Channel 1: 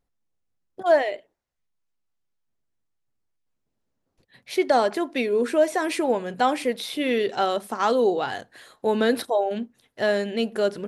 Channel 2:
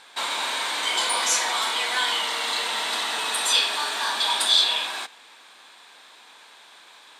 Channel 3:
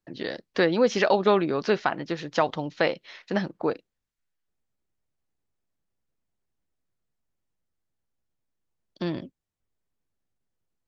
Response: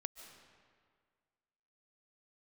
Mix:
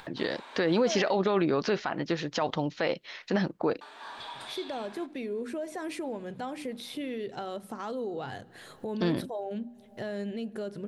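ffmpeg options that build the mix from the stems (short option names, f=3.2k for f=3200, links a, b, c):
-filter_complex "[0:a]equalizer=f=120:t=o:w=2.3:g=14,bandreject=f=60:t=h:w=6,bandreject=f=120:t=h:w=6,bandreject=f=180:t=h:w=6,bandreject=f=240:t=h:w=6,bandreject=f=300:t=h:w=6,alimiter=limit=-16dB:level=0:latency=1:release=97,volume=-12.5dB,asplit=2[a][b];[b]volume=-15dB[c];[1:a]lowpass=f=1.2k:p=1,volume=-16dB,asplit=3[d][e][f];[d]atrim=end=0.95,asetpts=PTS-STARTPTS,afade=t=out:st=0.946:d=0.004:c=hsin[g];[e]atrim=start=0.95:end=3.81,asetpts=PTS-STARTPTS,volume=0[h];[f]atrim=start=3.81,asetpts=PTS-STARTPTS,afade=t=in:d=0.004:c=hsin[i];[g][h][i]concat=n=3:v=0:a=1[j];[2:a]volume=2dB[k];[3:a]atrim=start_sample=2205[l];[c][l]afir=irnorm=-1:irlink=0[m];[a][j][k][m]amix=inputs=4:normalize=0,acompressor=mode=upward:threshold=-35dB:ratio=2.5,alimiter=limit=-17dB:level=0:latency=1:release=44"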